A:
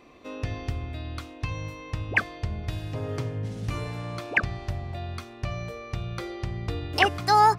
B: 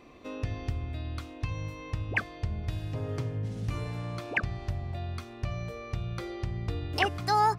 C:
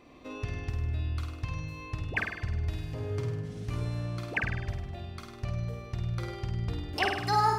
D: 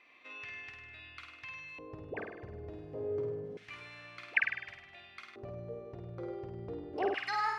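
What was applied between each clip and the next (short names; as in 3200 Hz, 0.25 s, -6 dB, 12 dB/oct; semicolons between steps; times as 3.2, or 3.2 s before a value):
low shelf 240 Hz +4.5 dB; in parallel at 0 dB: compressor, threshold -35 dBFS, peak gain reduction 19 dB; on the sum: gain -7.5 dB
flutter echo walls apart 8.7 m, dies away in 0.8 s; gain -2.5 dB
LFO band-pass square 0.28 Hz 460–2200 Hz; gain +4.5 dB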